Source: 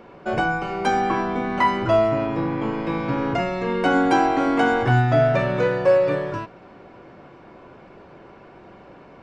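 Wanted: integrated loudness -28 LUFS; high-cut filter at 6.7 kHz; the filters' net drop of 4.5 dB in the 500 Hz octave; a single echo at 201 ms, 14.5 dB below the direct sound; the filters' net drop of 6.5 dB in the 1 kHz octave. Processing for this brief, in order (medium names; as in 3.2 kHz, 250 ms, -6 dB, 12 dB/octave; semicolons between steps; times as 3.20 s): low-pass 6.7 kHz; peaking EQ 500 Hz -3 dB; peaking EQ 1 kHz -8 dB; delay 201 ms -14.5 dB; trim -3.5 dB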